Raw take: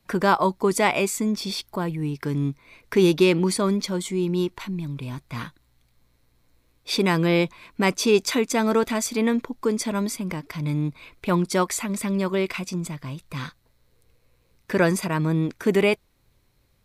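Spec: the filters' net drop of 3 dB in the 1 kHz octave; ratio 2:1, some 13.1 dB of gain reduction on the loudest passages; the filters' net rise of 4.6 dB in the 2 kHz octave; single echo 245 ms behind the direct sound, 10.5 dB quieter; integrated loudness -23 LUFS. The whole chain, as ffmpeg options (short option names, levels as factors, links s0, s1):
-af "equalizer=f=1000:t=o:g=-5.5,equalizer=f=2000:t=o:g=7,acompressor=threshold=0.0126:ratio=2,aecho=1:1:245:0.299,volume=3.35"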